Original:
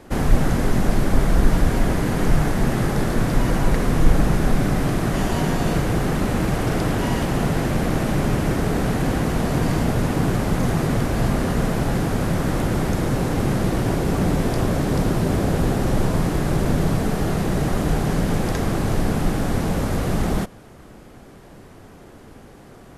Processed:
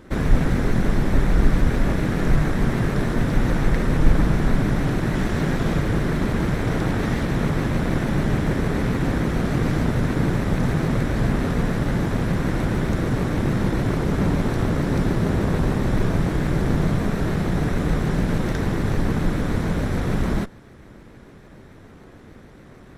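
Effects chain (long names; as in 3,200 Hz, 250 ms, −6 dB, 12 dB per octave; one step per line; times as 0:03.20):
lower of the sound and its delayed copy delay 0.53 ms
high-shelf EQ 5,900 Hz −11 dB
pitch modulation by a square or saw wave saw up 6.8 Hz, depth 100 cents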